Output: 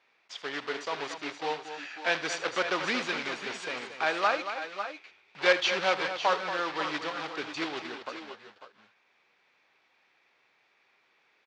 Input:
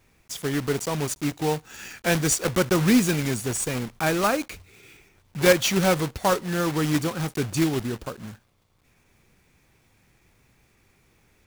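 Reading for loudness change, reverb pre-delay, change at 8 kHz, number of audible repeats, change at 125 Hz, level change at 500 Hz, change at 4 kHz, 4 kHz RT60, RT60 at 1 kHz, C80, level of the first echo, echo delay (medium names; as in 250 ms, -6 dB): -6.5 dB, no reverb, -16.5 dB, 3, -25.5 dB, -7.0 dB, -2.0 dB, no reverb, no reverb, no reverb, -15.5 dB, 78 ms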